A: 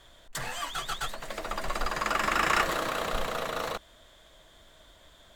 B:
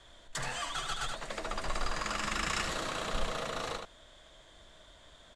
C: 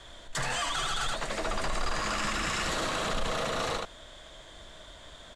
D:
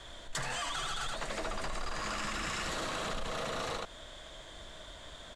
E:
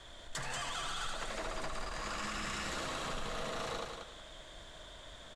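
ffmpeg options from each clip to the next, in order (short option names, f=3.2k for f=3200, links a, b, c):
-filter_complex "[0:a]lowpass=f=9.5k:w=0.5412,lowpass=f=9.5k:w=1.3066,aecho=1:1:76:0.473,acrossover=split=220|3000[a][b][c];[b]acompressor=threshold=-33dB:ratio=6[d];[a][d][c]amix=inputs=3:normalize=0,volume=-1.5dB"
-af "alimiter=level_in=6dB:limit=-24dB:level=0:latency=1:release=10,volume=-6dB,volume=8dB"
-af "acompressor=threshold=-33dB:ratio=6"
-af "aecho=1:1:186|372|558|744:0.562|0.152|0.041|0.0111,volume=-4dB"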